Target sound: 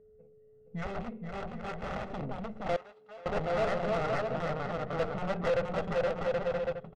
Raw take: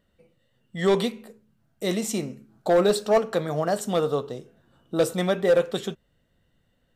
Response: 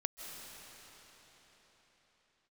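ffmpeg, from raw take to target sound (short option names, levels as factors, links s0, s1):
-filter_complex "[0:a]bandreject=f=360:w=12,aeval=exprs='0.299*(cos(1*acos(clip(val(0)/0.299,-1,1)))-cos(1*PI/2))+0.0531*(cos(2*acos(clip(val(0)/0.299,-1,1)))-cos(2*PI/2))+0.0944*(cos(7*acos(clip(val(0)/0.299,-1,1)))-cos(7*PI/2))+0.0211*(cos(8*acos(clip(val(0)/0.299,-1,1)))-cos(8*PI/2))':c=same,aecho=1:1:470|775.5|974.1|1103|1187:0.631|0.398|0.251|0.158|0.1,asoftclip=type=tanh:threshold=0.119,asettb=1/sr,asplit=3[s0][s1][s2];[s0]atrim=end=2.764[s3];[s1]atrim=start=2.76:end=3.26,asetpts=PTS-STARTPTS,afade=t=in:d=0.004:c=qsin,afade=t=out:st=0.496:d=0.004:c=qsin,aderivative[s4];[s2]atrim=start=3.256[s5];[s3][s4]acrossfade=d=0.004:c1=hsin:c2=qsin[s6];[s6][s5]acrossfade=d=0.004:c1=qsin:c2=hsin,alimiter=limit=0.0794:level=0:latency=1:release=10,asettb=1/sr,asplit=3[s7][s8][s9];[s7]atrim=end=0.864[s10];[s8]atrim=start=0.86:end=2.11,asetpts=PTS-STARTPTS,afade=t=in:d=0.004:c=qsin,afade=t=out:st=1.246:d=0.004:c=qsin,aeval=exprs='(mod(18.8*val(0)+1,2)-1)/18.8':c=same[s11];[s9]atrim=start=2.106[s12];[s10][s11]acrossfade=d=0.004:c1=hsin:c2=qsin[s13];[s13][s12]acrossfade=d=0.004:c1=qsin:c2=hsin,lowpass=3100,aecho=1:1:1.5:0.54,adynamicsmooth=sensitivity=2:basefreq=700,aeval=exprs='val(0)+0.002*sin(2*PI*430*n/s)':c=same,volume=0.708"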